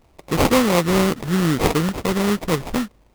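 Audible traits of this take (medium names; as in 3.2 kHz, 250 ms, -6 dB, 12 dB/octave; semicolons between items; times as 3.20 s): aliases and images of a low sample rate 1.6 kHz, jitter 20%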